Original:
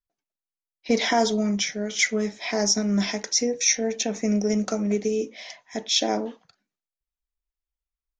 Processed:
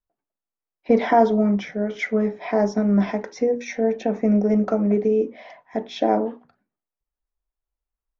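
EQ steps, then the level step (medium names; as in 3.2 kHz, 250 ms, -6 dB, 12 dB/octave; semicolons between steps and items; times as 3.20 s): low-pass 1.1 kHz 12 dB/octave; bass shelf 400 Hz -4 dB; hum notches 60/120/180/240/300/360/420 Hz; +8.0 dB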